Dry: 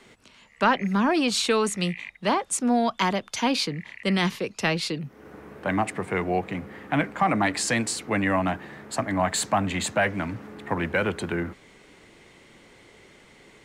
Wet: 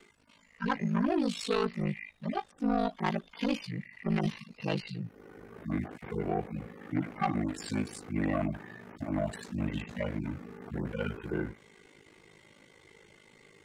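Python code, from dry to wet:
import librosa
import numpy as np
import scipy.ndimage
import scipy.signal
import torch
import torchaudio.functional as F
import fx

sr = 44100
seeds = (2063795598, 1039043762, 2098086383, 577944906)

y = fx.hpss_only(x, sr, part='harmonic')
y = 10.0 ** (-20.0 / 20.0) * np.tanh(y / 10.0 ** (-20.0 / 20.0))
y = y * np.sin(2.0 * np.pi * 26.0 * np.arange(len(y)) / sr)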